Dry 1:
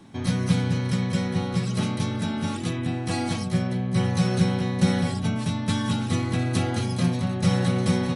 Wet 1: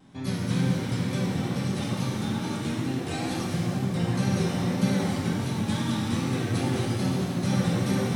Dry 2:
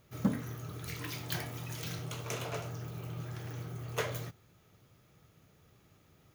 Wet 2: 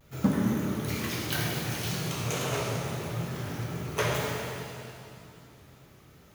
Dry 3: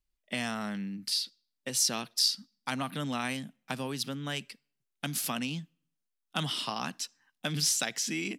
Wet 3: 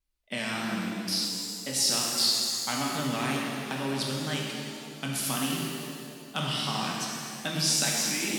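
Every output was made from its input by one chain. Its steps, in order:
wow and flutter 110 cents; analogue delay 0.266 s, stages 1024, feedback 51%, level -12 dB; shimmer reverb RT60 2.2 s, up +7 st, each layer -8 dB, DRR -2.5 dB; normalise peaks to -12 dBFS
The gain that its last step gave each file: -7.0, +4.0, -1.0 dB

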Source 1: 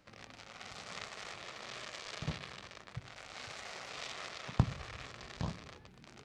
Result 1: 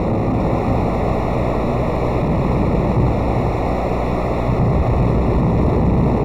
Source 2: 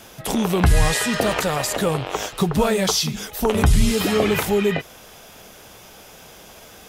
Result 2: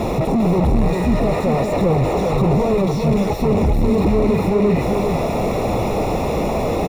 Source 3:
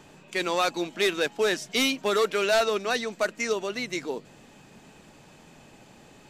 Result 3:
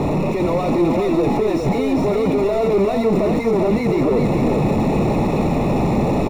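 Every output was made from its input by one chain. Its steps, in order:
infinite clipping; buzz 60 Hz, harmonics 34, -50 dBFS -2 dB/oct; running mean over 28 samples; on a send: echo 0.399 s -4.5 dB; on the sum: mismatched tape noise reduction decoder only; match loudness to -18 LUFS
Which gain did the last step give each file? +28.0, +6.5, +13.5 dB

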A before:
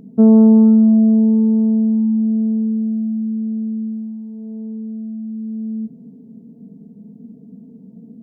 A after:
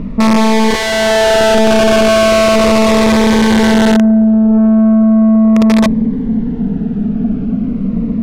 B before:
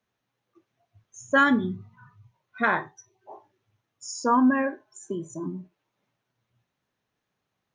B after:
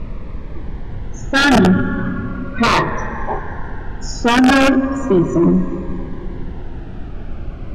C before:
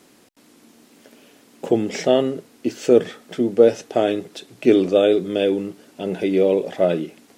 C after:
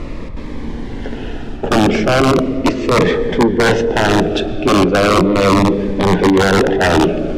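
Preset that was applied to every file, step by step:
reverse; compressor 10:1, threshold -24 dBFS; reverse; plate-style reverb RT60 3.4 s, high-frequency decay 0.65×, pre-delay 0.1 s, DRR 13.5 dB; added noise brown -48 dBFS; wrapped overs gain 21 dB; LPF 2300 Hz 12 dB/oct; soft clip -30.5 dBFS; cascading phaser falling 0.37 Hz; normalise peaks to -2 dBFS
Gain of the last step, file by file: +24.5, +24.0, +24.0 dB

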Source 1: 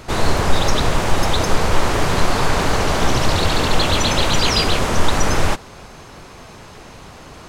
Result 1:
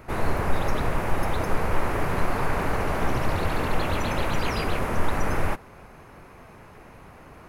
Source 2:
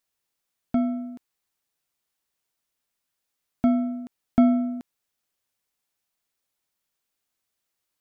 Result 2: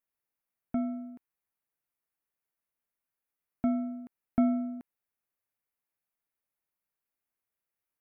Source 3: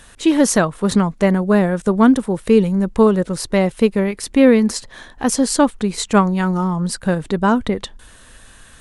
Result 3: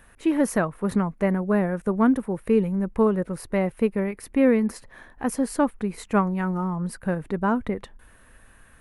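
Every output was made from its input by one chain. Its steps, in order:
band shelf 5100 Hz -12 dB; gain -7.5 dB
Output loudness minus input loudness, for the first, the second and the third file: -9.0, -7.5, -7.5 LU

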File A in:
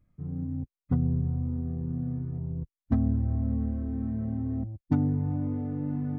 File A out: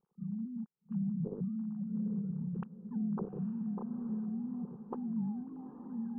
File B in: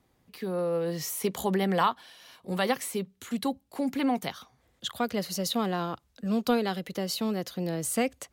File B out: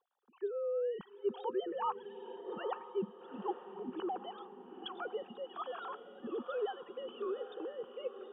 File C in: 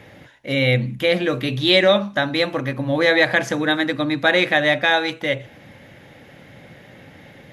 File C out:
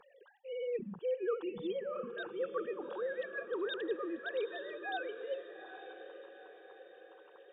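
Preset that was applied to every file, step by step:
sine-wave speech; reverse; compressor 5:1, threshold -29 dBFS; reverse; fixed phaser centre 420 Hz, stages 8; diffused feedback echo 0.861 s, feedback 47%, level -10.5 dB; gain -2.5 dB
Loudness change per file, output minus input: -8.0, -10.5, -20.5 LU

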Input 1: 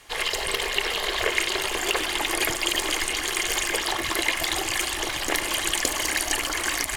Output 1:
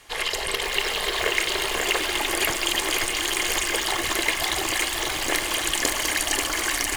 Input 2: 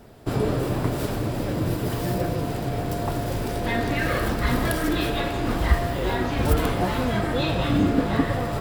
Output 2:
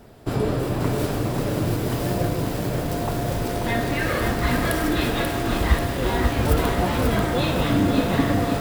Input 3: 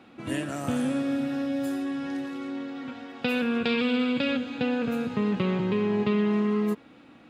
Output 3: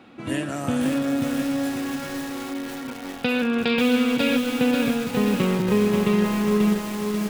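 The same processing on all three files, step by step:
lo-fi delay 0.537 s, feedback 55%, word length 6-bit, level -4 dB; match loudness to -23 LUFS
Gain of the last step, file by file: 0.0, +0.5, +3.5 dB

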